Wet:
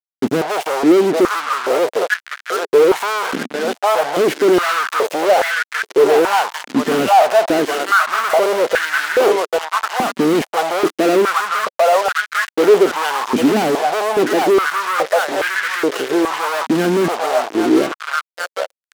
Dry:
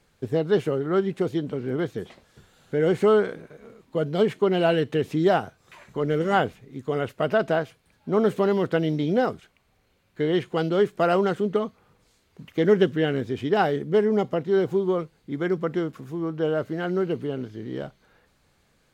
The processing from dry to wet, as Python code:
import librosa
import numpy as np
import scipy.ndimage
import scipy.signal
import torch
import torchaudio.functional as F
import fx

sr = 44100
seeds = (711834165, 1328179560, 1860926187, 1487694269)

y = fx.echo_stepped(x, sr, ms=796, hz=950.0, octaves=0.7, feedback_pct=70, wet_db=-1.0)
y = fx.fuzz(y, sr, gain_db=43.0, gate_db=-38.0)
y = fx.filter_held_highpass(y, sr, hz=2.4, low_hz=240.0, high_hz=1600.0)
y = y * 10.0 ** (-3.5 / 20.0)